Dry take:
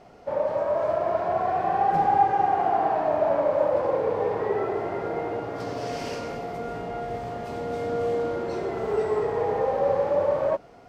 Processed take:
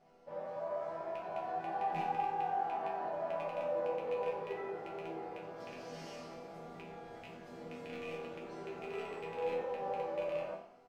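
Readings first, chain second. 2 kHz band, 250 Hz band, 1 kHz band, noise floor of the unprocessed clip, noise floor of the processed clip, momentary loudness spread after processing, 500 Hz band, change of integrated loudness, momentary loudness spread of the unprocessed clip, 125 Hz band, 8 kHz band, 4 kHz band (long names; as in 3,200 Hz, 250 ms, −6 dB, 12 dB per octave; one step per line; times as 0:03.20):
−10.5 dB, −14.0 dB, −14.0 dB, −48 dBFS, −54 dBFS, 13 LU, −15.0 dB, −14.0 dB, 10 LU, −16.0 dB, can't be measured, −9.5 dB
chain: loose part that buzzes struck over −32 dBFS, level −19 dBFS
resonators tuned to a chord E3 minor, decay 0.51 s
echo with shifted repeats 90 ms, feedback 49%, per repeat +38 Hz, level −15 dB
level +4.5 dB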